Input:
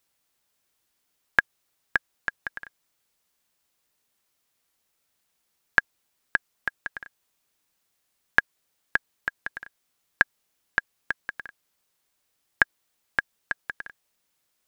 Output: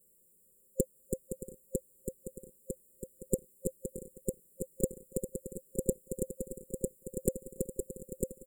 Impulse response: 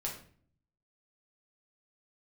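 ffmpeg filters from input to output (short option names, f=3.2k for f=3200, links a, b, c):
-af "afftfilt=real='re*(1-between(b*sr/4096,310,4100))':imag='im*(1-between(b*sr/4096,310,4100))':win_size=4096:overlap=0.75,equalizer=f=300:w=6.9:g=11.5,asetrate=76440,aresample=44100,aecho=1:1:5.2:0.99,aecho=1:1:951|1902|2853|3804|4755|5706|6657:0.631|0.347|0.191|0.105|0.0577|0.0318|0.0175,volume=10dB"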